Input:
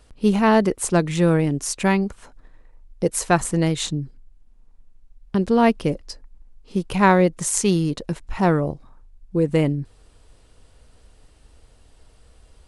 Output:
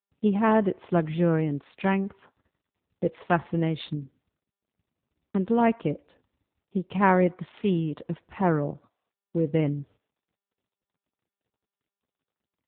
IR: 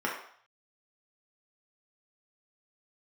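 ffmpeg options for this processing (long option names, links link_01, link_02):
-filter_complex "[0:a]asplit=3[link_01][link_02][link_03];[link_01]afade=type=out:start_time=8.38:duration=0.02[link_04];[link_02]highpass=frequency=88:width=0.5412,highpass=frequency=88:width=1.3066,afade=type=in:start_time=8.38:duration=0.02,afade=type=out:start_time=9.45:duration=0.02[link_05];[link_03]afade=type=in:start_time=9.45:duration=0.02[link_06];[link_04][link_05][link_06]amix=inputs=3:normalize=0,agate=range=-47dB:threshold=-42dB:ratio=16:detection=peak,asplit=2[link_07][link_08];[link_08]lowpass=frequency=3100:width=0.5412,lowpass=frequency=3100:width=1.3066[link_09];[1:a]atrim=start_sample=2205,lowshelf=frequency=210:gain=-11.5[link_10];[link_09][link_10]afir=irnorm=-1:irlink=0,volume=-28dB[link_11];[link_07][link_11]amix=inputs=2:normalize=0,volume=-5dB" -ar 8000 -c:a libopencore_amrnb -b:a 7400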